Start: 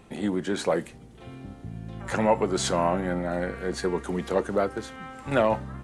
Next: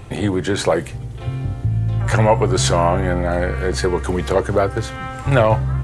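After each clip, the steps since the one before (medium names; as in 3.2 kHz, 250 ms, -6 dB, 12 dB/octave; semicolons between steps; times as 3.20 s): resonant low shelf 150 Hz +7 dB, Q 3; in parallel at +0.5 dB: compression, threshold -30 dBFS, peak gain reduction 13.5 dB; on the sum: trim +5.5 dB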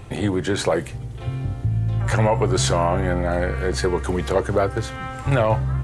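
loudness maximiser +5 dB; trim -7.5 dB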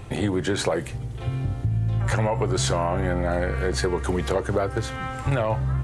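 compression, threshold -19 dBFS, peak gain reduction 6 dB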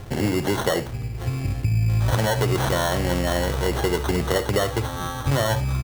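sample-and-hold 18×; on a send: early reflections 56 ms -15.5 dB, 72 ms -15.5 dB; on the sum: trim +1.5 dB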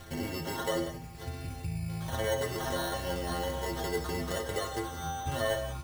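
inharmonic resonator 80 Hz, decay 0.41 s, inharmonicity 0.008; gated-style reverb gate 200 ms rising, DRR 8.5 dB; tape noise reduction on one side only encoder only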